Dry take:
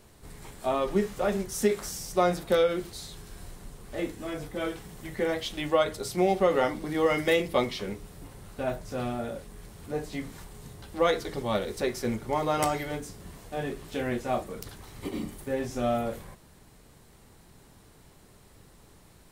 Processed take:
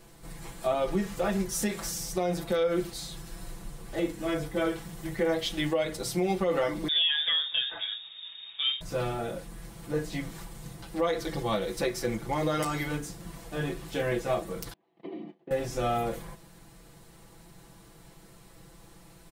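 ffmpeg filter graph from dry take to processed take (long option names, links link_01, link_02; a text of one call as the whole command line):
ffmpeg -i in.wav -filter_complex "[0:a]asettb=1/sr,asplit=3[link_01][link_02][link_03];[link_01]atrim=end=6.884[link_04];[link_02]atrim=start=6.88:end=8.81,asetpts=PTS-STARTPTS,afade=type=in:duration=0.004:curve=qsin,afade=type=out:start_time=1.926:duration=0.004:curve=qsin,highshelf=frequency=3000:gain=-7.5,lowpass=frequency=3200:width_type=q:width=0.5098,lowpass=frequency=3200:width_type=q:width=0.6013,lowpass=frequency=3200:width_type=q:width=0.9,lowpass=frequency=3200:width_type=q:width=2.563,afreqshift=-3800[link_05];[link_03]atrim=start=8.806[link_06];[link_04][link_05]acrossfade=duration=0.004:curve1=hsin:curve2=qsin[link_07];[link_07][link_06]acrossfade=duration=0.004:curve1=qsin:curve2=hsin,asettb=1/sr,asplit=3[link_08][link_09][link_10];[link_08]atrim=end=14.734[link_11];[link_09]atrim=start=14.73:end=15.51,asetpts=PTS-STARTPTS,afade=type=in:duration=0.004:curve=qsin,afade=type=out:start_time=0.776:duration=0.004:curve=qsin,agate=range=-27dB:threshold=-41dB:ratio=16:release=100:detection=peak,acompressor=threshold=-41dB:ratio=12:attack=3.2:release=140:knee=1:detection=peak,highpass=frequency=180:width=0.5412,highpass=frequency=180:width=1.3066,equalizer=frequency=250:width_type=q:width=4:gain=4,equalizer=frequency=380:width_type=q:width=4:gain=9,equalizer=frequency=700:width_type=q:width=4:gain=10,equalizer=frequency=1400:width_type=q:width=4:gain=-9,equalizer=frequency=2200:width_type=q:width=4:gain=-3,lowpass=frequency=3100:width=0.5412,lowpass=frequency=3100:width=1.3066[link_12];[link_10]atrim=start=15.506[link_13];[link_11][link_12]acrossfade=duration=0.004:curve1=hsin:curve2=qsin[link_14];[link_14][link_13]acrossfade=duration=0.004:curve1=qsin:curve2=hsin,aecho=1:1:6:0.87,alimiter=limit=-18dB:level=0:latency=1:release=149" out.wav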